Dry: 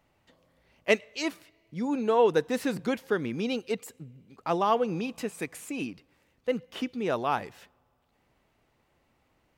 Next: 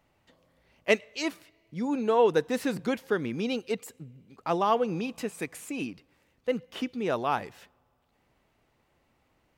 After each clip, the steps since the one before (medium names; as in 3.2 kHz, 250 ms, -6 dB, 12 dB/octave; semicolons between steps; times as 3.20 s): no audible change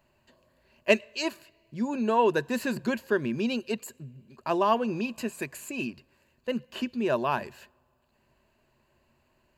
rippled EQ curve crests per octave 1.4, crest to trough 10 dB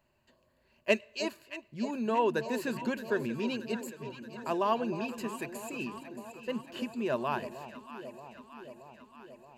echo whose repeats swap between lows and highs 313 ms, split 900 Hz, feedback 81%, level -10.5 dB; trim -5 dB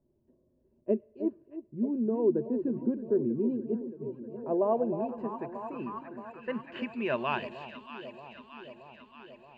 low-pass sweep 350 Hz -> 3.1 kHz, 3.93–7.47 s